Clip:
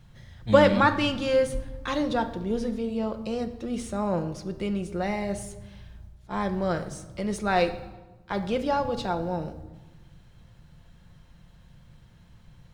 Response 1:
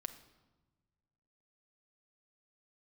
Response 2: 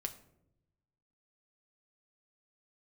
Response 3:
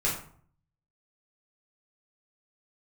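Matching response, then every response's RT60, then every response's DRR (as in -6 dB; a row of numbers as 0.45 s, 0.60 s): 1; 1.2 s, 0.80 s, 0.55 s; 7.5 dB, 5.0 dB, -7.0 dB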